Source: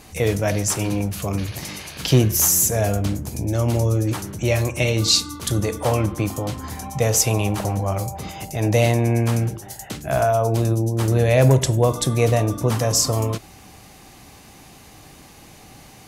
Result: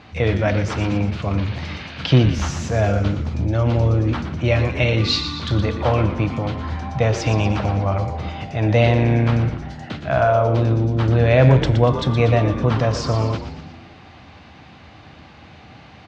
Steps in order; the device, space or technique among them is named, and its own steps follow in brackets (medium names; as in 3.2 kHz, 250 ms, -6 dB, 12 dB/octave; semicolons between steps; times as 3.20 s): frequency-shifting delay pedal into a guitar cabinet (frequency-shifting echo 119 ms, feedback 55%, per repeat -89 Hz, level -9 dB; cabinet simulation 78–3900 Hz, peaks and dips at 81 Hz +9 dB, 400 Hz -5 dB, 1.4 kHz +4 dB); trim +2 dB